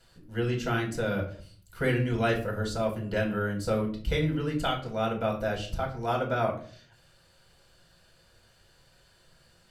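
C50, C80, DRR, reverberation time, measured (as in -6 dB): 9.5 dB, 14.0 dB, -0.5 dB, 0.50 s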